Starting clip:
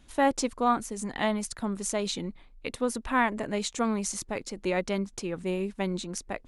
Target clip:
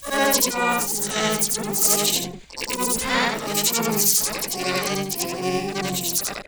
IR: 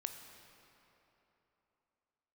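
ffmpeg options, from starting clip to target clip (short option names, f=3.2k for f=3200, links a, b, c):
-filter_complex "[0:a]afftfilt=real='re':imag='-im':win_size=8192:overlap=0.75,aexciter=amount=3.4:drive=4.5:freq=2.3k,asplit=3[a][b][c];[b]asetrate=33038,aresample=44100,atempo=1.33484,volume=-6dB[d];[c]asetrate=88200,aresample=44100,atempo=0.5,volume=-1dB[e];[a][d][e]amix=inputs=3:normalize=0,volume=5.5dB"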